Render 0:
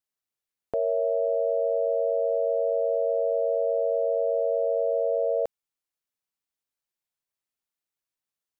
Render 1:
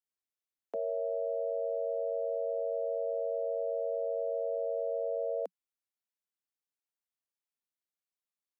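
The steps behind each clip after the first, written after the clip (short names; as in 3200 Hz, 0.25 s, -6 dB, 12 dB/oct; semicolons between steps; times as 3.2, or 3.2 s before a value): steep high-pass 180 Hz 96 dB/oct; gain -8.5 dB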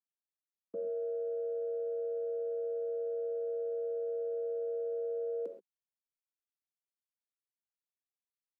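resonant low shelf 500 Hz +11 dB, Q 3; expander -22 dBFS; non-linear reverb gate 0.15 s flat, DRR 5.5 dB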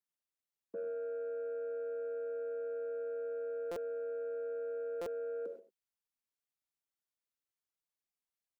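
soft clip -32 dBFS, distortion -22 dB; echo 98 ms -13 dB; stuck buffer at 3.71/5.01, samples 256, times 8; gain -1 dB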